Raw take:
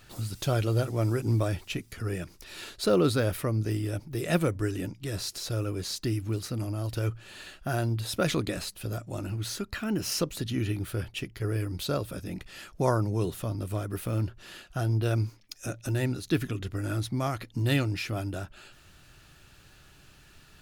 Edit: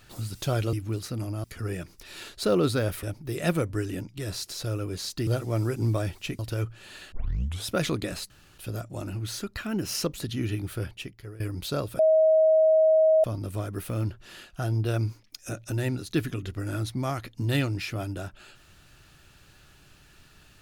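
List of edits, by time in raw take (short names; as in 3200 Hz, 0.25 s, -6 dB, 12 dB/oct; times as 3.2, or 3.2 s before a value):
0.73–1.85 swap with 6.13–6.84
3.44–3.89 cut
7.57 tape start 0.54 s
8.75 insert room tone 0.28 s
11–11.57 fade out, to -18.5 dB
12.16–13.41 bleep 634 Hz -16 dBFS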